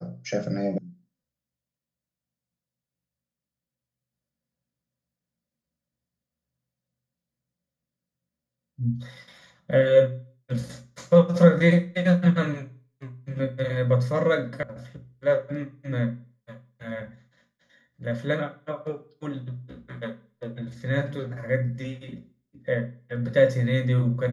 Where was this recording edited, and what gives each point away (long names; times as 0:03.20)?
0:00.78: cut off before it has died away
0:14.63: cut off before it has died away